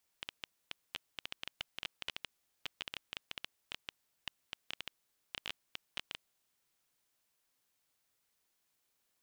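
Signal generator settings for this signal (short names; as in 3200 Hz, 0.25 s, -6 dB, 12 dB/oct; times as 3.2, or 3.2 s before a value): random clicks 9.5/s -21.5 dBFS 5.99 s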